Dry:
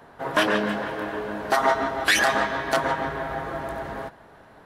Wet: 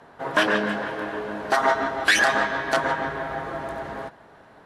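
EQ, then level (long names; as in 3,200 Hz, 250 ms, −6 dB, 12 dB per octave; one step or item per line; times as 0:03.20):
low-pass filter 10,000 Hz 12 dB per octave
low-shelf EQ 68 Hz −8 dB
dynamic equaliser 1,600 Hz, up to +4 dB, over −38 dBFS, Q 6.2
0.0 dB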